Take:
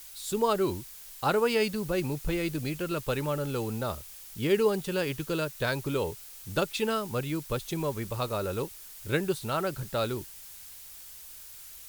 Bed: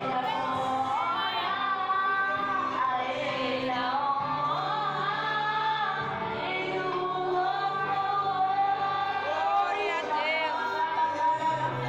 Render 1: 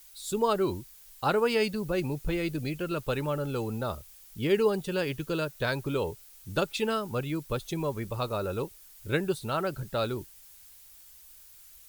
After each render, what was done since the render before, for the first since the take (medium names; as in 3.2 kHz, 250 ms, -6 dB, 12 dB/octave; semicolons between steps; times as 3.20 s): noise reduction 8 dB, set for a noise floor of -47 dBFS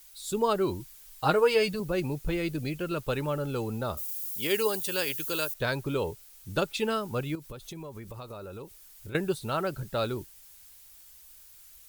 0.79–1.80 s: comb 6.4 ms; 3.97–5.54 s: RIAA curve recording; 7.35–9.15 s: compression, threshold -38 dBFS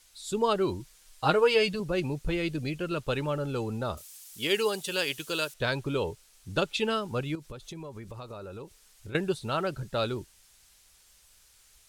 low-pass 8.7 kHz 12 dB/octave; dynamic bell 3.1 kHz, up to +5 dB, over -46 dBFS, Q 2.3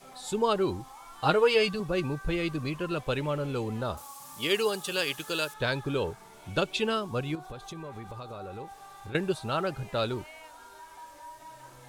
add bed -20.5 dB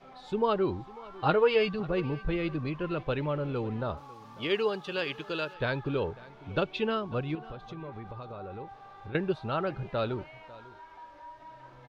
distance through air 270 m; delay 547 ms -20.5 dB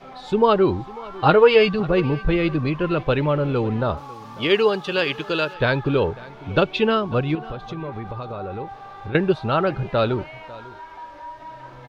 trim +10.5 dB; peak limiter -3 dBFS, peak gain reduction 1 dB